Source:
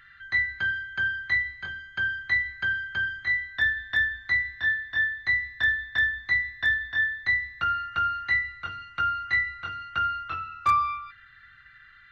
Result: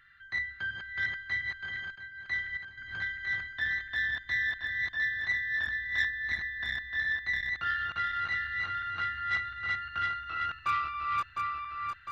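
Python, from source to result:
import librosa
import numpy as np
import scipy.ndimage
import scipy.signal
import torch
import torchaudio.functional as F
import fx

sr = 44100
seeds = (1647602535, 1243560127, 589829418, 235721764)

y = fx.reverse_delay_fb(x, sr, ms=353, feedback_pct=72, wet_db=-1.5)
y = fx.step_gate(y, sr, bpm=146, pattern='x...xxx..', floor_db=-12.0, edge_ms=4.5, at=(1.9, 2.77), fade=0.02)
y = fx.transformer_sat(y, sr, knee_hz=1300.0)
y = y * librosa.db_to_amplitude(-7.5)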